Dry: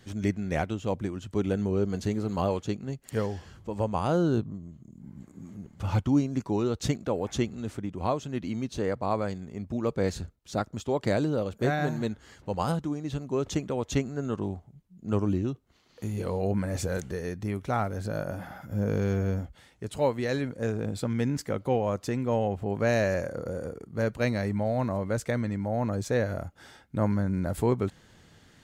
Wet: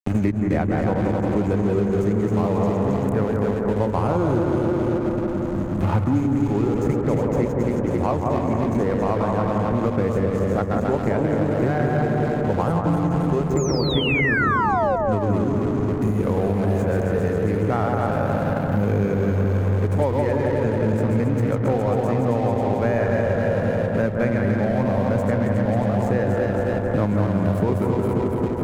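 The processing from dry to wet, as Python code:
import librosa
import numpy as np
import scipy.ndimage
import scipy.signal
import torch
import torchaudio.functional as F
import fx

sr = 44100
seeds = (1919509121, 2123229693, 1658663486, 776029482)

p1 = fx.reverse_delay_fb(x, sr, ms=135, feedback_pct=77, wet_db=-4.0)
p2 = fx.level_steps(p1, sr, step_db=17)
p3 = p1 + (p2 * librosa.db_to_amplitude(-1.0))
p4 = fx.brickwall_bandstop(p3, sr, low_hz=2600.0, high_hz=6100.0)
p5 = fx.peak_eq(p4, sr, hz=7600.0, db=-7.0, octaves=2.1)
p6 = fx.spec_paint(p5, sr, seeds[0], shape='fall', start_s=13.57, length_s=1.39, low_hz=500.0, high_hz=7300.0, level_db=-19.0)
p7 = fx.backlash(p6, sr, play_db=-31.5)
p8 = p7 + fx.echo_bbd(p7, sr, ms=176, stages=2048, feedback_pct=52, wet_db=-4.0, dry=0)
p9 = fx.band_squash(p8, sr, depth_pct=100)
y = p9 * librosa.db_to_amplitude(1.0)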